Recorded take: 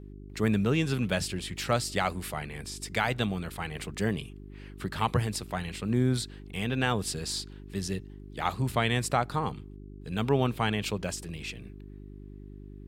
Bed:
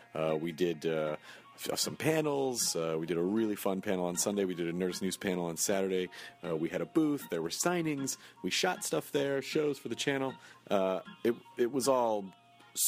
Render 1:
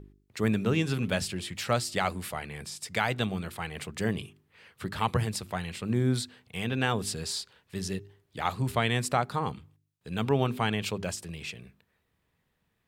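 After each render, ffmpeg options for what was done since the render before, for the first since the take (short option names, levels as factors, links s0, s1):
-af "bandreject=f=50:t=h:w=4,bandreject=f=100:t=h:w=4,bandreject=f=150:t=h:w=4,bandreject=f=200:t=h:w=4,bandreject=f=250:t=h:w=4,bandreject=f=300:t=h:w=4,bandreject=f=350:t=h:w=4,bandreject=f=400:t=h:w=4"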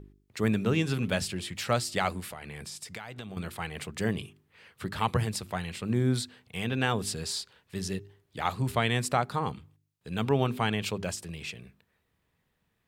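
-filter_complex "[0:a]asettb=1/sr,asplit=3[s0][s1][s2];[s0]atrim=end=2.204[s3];[s1]atrim=start=2.2:end=3.37,asetpts=PTS-STARTPTS,afade=t=in:d=0.004:c=qsin,afade=t=out:st=1.166:d=0.004:c=qsin,acompressor=threshold=0.0158:ratio=10:attack=3.2:release=140:knee=1:detection=peak[s4];[s2]atrim=start=3.366[s5];[s3][s4]acrossfade=d=0.004:c1=hsin:c2=qsin[s6];[s6][s5]acrossfade=d=0.004:c1=qsin:c2=hsin"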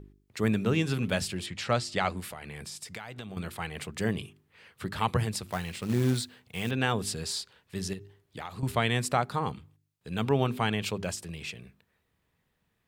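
-filter_complex "[0:a]asettb=1/sr,asplit=3[s0][s1][s2];[s0]atrim=end=1.464[s3];[s1]atrim=start=1.46:end=2.17,asetpts=PTS-STARTPTS,afade=t=in:d=0.004:c=qsin,afade=t=out:st=0.706:d=0.004:c=qsin,lowpass=6500[s4];[s2]atrim=start=2.166[s5];[s3][s4]acrossfade=d=0.004:c1=hsin:c2=qsin[s6];[s6][s5]acrossfade=d=0.004:c1=qsin:c2=hsin,asettb=1/sr,asplit=3[s7][s8][s9];[s7]atrim=end=5.494[s10];[s8]atrim=start=5.49:end=6.71,asetpts=PTS-STARTPTS,afade=t=in:d=0.004:c=qsin,afade=t=out:st=1.216:d=0.004:c=qsin,acrusher=bits=4:mode=log:mix=0:aa=0.000001[s11];[s9]atrim=start=6.706[s12];[s10][s11]acrossfade=d=0.004:c1=hsin:c2=qsin[s13];[s13][s12]acrossfade=d=0.004:c1=qsin:c2=hsin,asettb=1/sr,asplit=3[s14][s15][s16];[s14]atrim=end=7.934[s17];[s15]atrim=start=7.93:end=8.63,asetpts=PTS-STARTPTS,afade=t=in:d=0.004:c=qsin,afade=t=out:st=0.696:d=0.004:c=qsin,acompressor=threshold=0.02:ratio=12:attack=3.2:release=140:knee=1:detection=peak[s18];[s16]atrim=start=8.626[s19];[s17][s18]acrossfade=d=0.004:c1=hsin:c2=qsin[s20];[s20][s19]acrossfade=d=0.004:c1=qsin:c2=hsin"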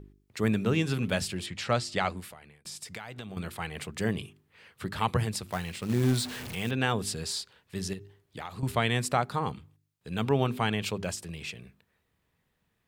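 -filter_complex "[0:a]asettb=1/sr,asplit=3[s0][s1][s2];[s0]atrim=end=6.034[s3];[s1]atrim=start=6.03:end=6.55,asetpts=PTS-STARTPTS,afade=t=in:d=0.004:c=qsin,afade=t=out:st=0.516:d=0.004:c=qsin,aeval=exprs='val(0)+0.5*0.02*sgn(val(0))':c=same[s4];[s2]atrim=start=6.546[s5];[s3][s4]acrossfade=d=0.004:c1=hsin:c2=qsin[s6];[s6][s5]acrossfade=d=0.004:c1=qsin:c2=hsin,asplit=2[s7][s8];[s7]atrim=end=2.65,asetpts=PTS-STARTPTS,afade=t=out:st=2.01:d=0.64[s9];[s8]atrim=start=2.65,asetpts=PTS-STARTPTS,afade=t=in:d=0.004:c=hsin[s10];[s9][s10]concat=n=2:v=0:a=1"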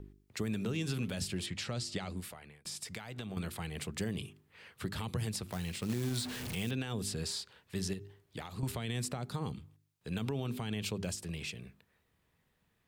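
-filter_complex "[0:a]alimiter=limit=0.1:level=0:latency=1:release=59,acrossover=split=420|3200[s0][s1][s2];[s0]acompressor=threshold=0.0224:ratio=4[s3];[s1]acompressor=threshold=0.00501:ratio=4[s4];[s2]acompressor=threshold=0.0126:ratio=4[s5];[s3][s4][s5]amix=inputs=3:normalize=0"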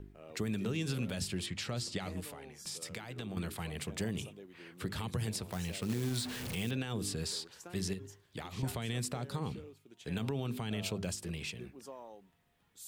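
-filter_complex "[1:a]volume=0.0944[s0];[0:a][s0]amix=inputs=2:normalize=0"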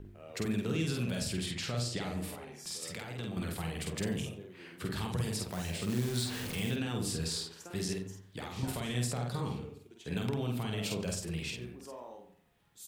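-filter_complex "[0:a]asplit=2[s0][s1];[s1]adelay=49,volume=0.75[s2];[s0][s2]amix=inputs=2:normalize=0,asplit=2[s3][s4];[s4]adelay=91,lowpass=f=1600:p=1,volume=0.335,asplit=2[s5][s6];[s6]adelay=91,lowpass=f=1600:p=1,volume=0.38,asplit=2[s7][s8];[s8]adelay=91,lowpass=f=1600:p=1,volume=0.38,asplit=2[s9][s10];[s10]adelay=91,lowpass=f=1600:p=1,volume=0.38[s11];[s3][s5][s7][s9][s11]amix=inputs=5:normalize=0"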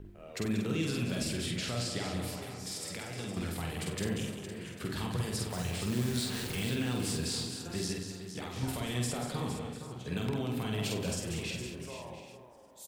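-af "aecho=1:1:46|186|462|697|796:0.299|0.355|0.316|0.141|0.126"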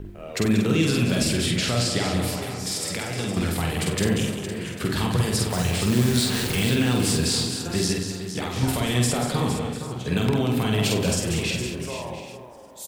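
-af "volume=3.76"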